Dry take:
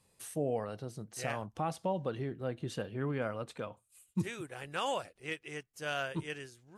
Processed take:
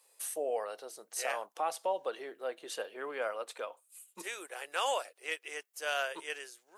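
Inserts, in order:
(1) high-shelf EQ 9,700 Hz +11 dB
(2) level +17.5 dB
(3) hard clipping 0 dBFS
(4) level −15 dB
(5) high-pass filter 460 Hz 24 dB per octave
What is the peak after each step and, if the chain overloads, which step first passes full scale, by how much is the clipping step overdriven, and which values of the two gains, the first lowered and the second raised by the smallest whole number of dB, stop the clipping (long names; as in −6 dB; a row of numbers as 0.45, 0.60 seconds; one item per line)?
−22.0, −4.5, −4.5, −19.5, −17.0 dBFS
no step passes full scale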